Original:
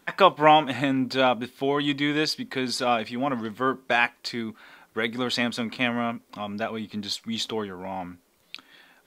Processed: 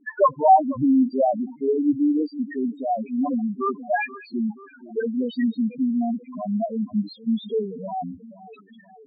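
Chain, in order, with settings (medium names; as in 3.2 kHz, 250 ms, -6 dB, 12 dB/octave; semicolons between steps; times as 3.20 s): in parallel at 0 dB: compression, threshold -34 dBFS, peak gain reduction 21 dB; on the sum: two-band feedback delay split 1.6 kHz, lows 478 ms, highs 224 ms, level -15.5 dB; 1.45–3.25 s: touch-sensitive phaser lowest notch 480 Hz, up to 1.4 kHz, full sweep at -17.5 dBFS; loudest bins only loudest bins 2; distance through air 440 m; trim +7 dB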